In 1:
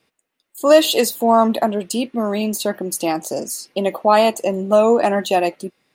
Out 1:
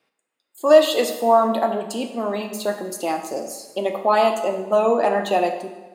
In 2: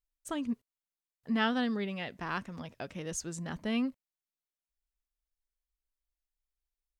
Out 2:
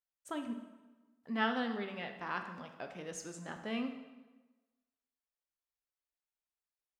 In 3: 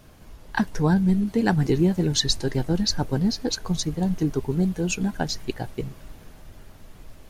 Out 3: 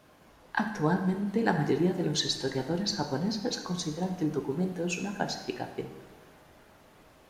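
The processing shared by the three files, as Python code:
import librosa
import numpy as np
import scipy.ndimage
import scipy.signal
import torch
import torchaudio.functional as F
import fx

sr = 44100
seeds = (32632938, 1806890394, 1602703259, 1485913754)

y = fx.highpass(x, sr, hz=460.0, slope=6)
y = fx.high_shelf(y, sr, hz=3100.0, db=-9.0)
y = fx.rev_plate(y, sr, seeds[0], rt60_s=1.2, hf_ratio=0.8, predelay_ms=0, drr_db=5.0)
y = y * 10.0 ** (-1.0 / 20.0)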